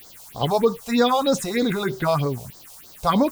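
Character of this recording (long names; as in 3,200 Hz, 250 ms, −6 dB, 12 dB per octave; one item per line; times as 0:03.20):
a quantiser's noise floor 8 bits, dither triangular
phaser sweep stages 4, 3.2 Hz, lowest notch 270–2,600 Hz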